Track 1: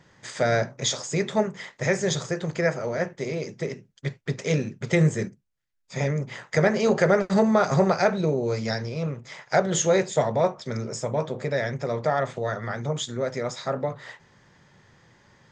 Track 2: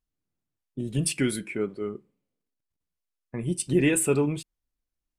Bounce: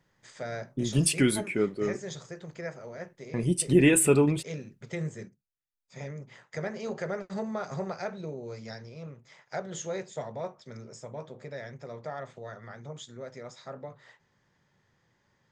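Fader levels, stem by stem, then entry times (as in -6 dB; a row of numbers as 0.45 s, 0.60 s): -14.0 dB, +2.0 dB; 0.00 s, 0.00 s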